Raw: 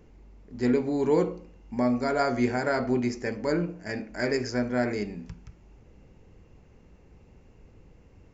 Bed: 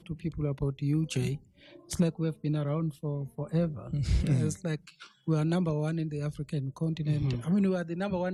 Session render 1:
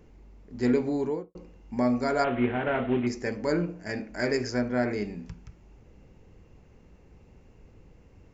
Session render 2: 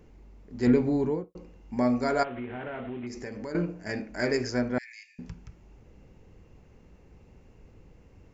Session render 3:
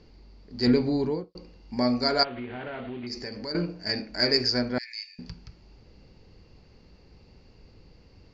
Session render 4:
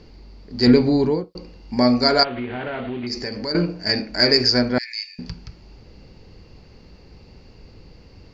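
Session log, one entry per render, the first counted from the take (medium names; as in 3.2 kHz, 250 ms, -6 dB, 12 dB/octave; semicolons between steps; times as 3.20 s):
0.86–1.35 s: studio fade out; 2.24–3.07 s: CVSD coder 16 kbps; 4.61–5.04 s: distance through air 78 m
0.67–1.24 s: tone controls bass +7 dB, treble -5 dB; 2.23–3.55 s: compression 5:1, threshold -34 dBFS; 4.78–5.19 s: rippled Chebyshev high-pass 1.7 kHz, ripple 9 dB
resonant low-pass 4.6 kHz, resonance Q 13
trim +8 dB; peak limiter -3 dBFS, peak gain reduction 3 dB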